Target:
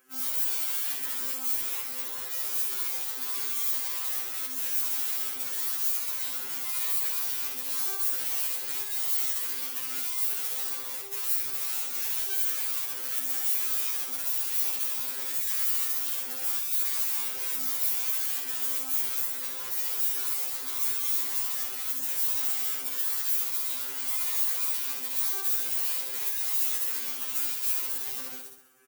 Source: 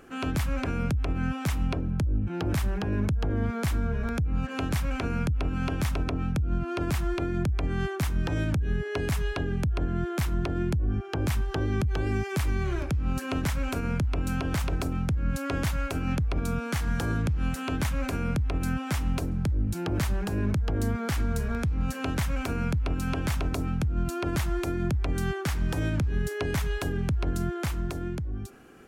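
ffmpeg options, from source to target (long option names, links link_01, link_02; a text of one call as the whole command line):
ffmpeg -i in.wav -filter_complex "[0:a]aeval=exprs='(mod(26.6*val(0)+1,2)-1)/26.6':channel_layout=same,lowshelf=frequency=82:gain=-9,asplit=2[link_01][link_02];[link_02]aeval=exprs='(mod(63.1*val(0)+1,2)-1)/63.1':channel_layout=same,volume=-7dB[link_03];[link_01][link_03]amix=inputs=2:normalize=0,asuperstop=centerf=680:order=4:qfactor=4.3,aeval=exprs='0.0841*(cos(1*acos(clip(val(0)/0.0841,-1,1)))-cos(1*PI/2))+0.00531*(cos(7*acos(clip(val(0)/0.0841,-1,1)))-cos(7*PI/2))':channel_layout=same,highpass=44,aemphasis=mode=production:type=riaa,bandreject=frequency=181.7:width_type=h:width=4,bandreject=frequency=363.4:width_type=h:width=4,bandreject=frequency=545.1:width_type=h:width=4,bandreject=frequency=726.8:width_type=h:width=4,bandreject=frequency=908.5:width_type=h:width=4,bandreject=frequency=1090.2:width_type=h:width=4,bandreject=frequency=1271.9:width_type=h:width=4,bandreject=frequency=1453.6:width_type=h:width=4,bandreject=frequency=1635.3:width_type=h:width=4,bandreject=frequency=1817:width_type=h:width=4,bandreject=frequency=1998.7:width_type=h:width=4,bandreject=frequency=2180.4:width_type=h:width=4,bandreject=frequency=2362.1:width_type=h:width=4,bandreject=frequency=2543.8:width_type=h:width=4,bandreject=frequency=2725.5:width_type=h:width=4,bandreject=frequency=2907.2:width_type=h:width=4,bandreject=frequency=3088.9:width_type=h:width=4,bandreject=frequency=3270.6:width_type=h:width=4,bandreject=frequency=3452.3:width_type=h:width=4,bandreject=frequency=3634:width_type=h:width=4,bandreject=frequency=3815.7:width_type=h:width=4,bandreject=frequency=3997.4:width_type=h:width=4,bandreject=frequency=4179.1:width_type=h:width=4,bandreject=frequency=4360.8:width_type=h:width=4,bandreject=frequency=4542.5:width_type=h:width=4,bandreject=frequency=4724.2:width_type=h:width=4,bandreject=frequency=4905.9:width_type=h:width=4,bandreject=frequency=5087.6:width_type=h:width=4,bandreject=frequency=5269.3:width_type=h:width=4,asplit=2[link_04][link_05];[link_05]aecho=0:1:66|132|198|264|330|396:0.596|0.274|0.126|0.058|0.0267|0.0123[link_06];[link_04][link_06]amix=inputs=2:normalize=0,afftfilt=real='re*2.45*eq(mod(b,6),0)':imag='im*2.45*eq(mod(b,6),0)':win_size=2048:overlap=0.75,volume=-9dB" out.wav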